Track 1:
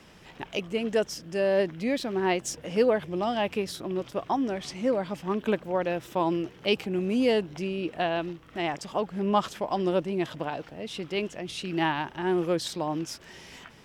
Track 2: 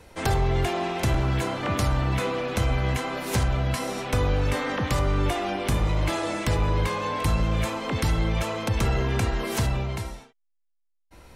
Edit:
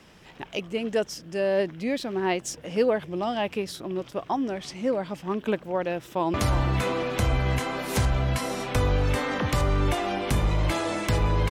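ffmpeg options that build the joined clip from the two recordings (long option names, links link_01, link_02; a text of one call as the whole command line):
ffmpeg -i cue0.wav -i cue1.wav -filter_complex "[0:a]apad=whole_dur=11.5,atrim=end=11.5,atrim=end=6.342[link_01];[1:a]atrim=start=1.718:end=6.88[link_02];[link_01][link_02]acrossfade=duration=0.004:curve1=hsin:curve2=hsin,asplit=2[link_03][link_04];[link_04]afade=type=in:start_time=6.06:duration=0.01,afade=type=out:start_time=6.34:duration=0.01,aecho=0:1:350|700|1050|1400|1750|2100:0.316228|0.173925|0.0956589|0.0526124|0.0289368|0.0159152[link_05];[link_03][link_05]amix=inputs=2:normalize=0" out.wav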